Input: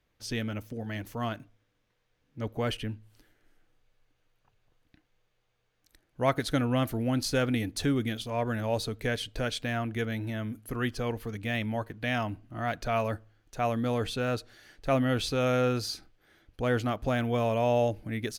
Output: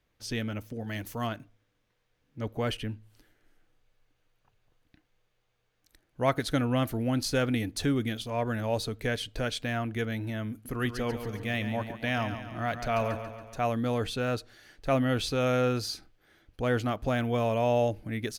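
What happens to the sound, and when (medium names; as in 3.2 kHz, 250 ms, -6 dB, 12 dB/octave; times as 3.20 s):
0.87–1.27 s: treble shelf 4.4 kHz +7.5 dB
10.51–13.59 s: feedback delay 140 ms, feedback 54%, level -9.5 dB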